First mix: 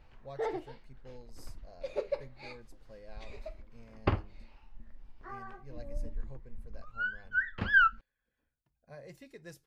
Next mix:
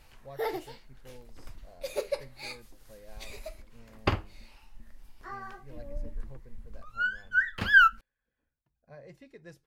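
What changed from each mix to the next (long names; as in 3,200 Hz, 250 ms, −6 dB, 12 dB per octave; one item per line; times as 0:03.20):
background: remove head-to-tape spacing loss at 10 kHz 37 dB
master: add high-shelf EQ 5,600 Hz −11.5 dB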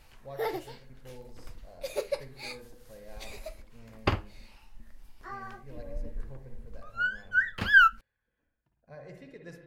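reverb: on, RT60 1.0 s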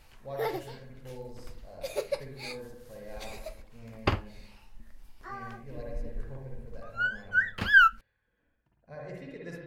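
speech: send +8.5 dB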